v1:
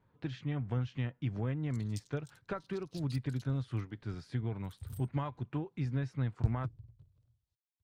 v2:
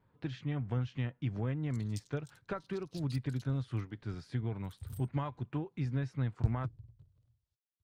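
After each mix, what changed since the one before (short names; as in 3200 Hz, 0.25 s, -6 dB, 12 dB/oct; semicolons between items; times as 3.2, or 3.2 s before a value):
none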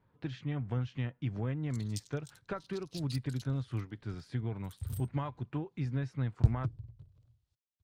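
background +6.0 dB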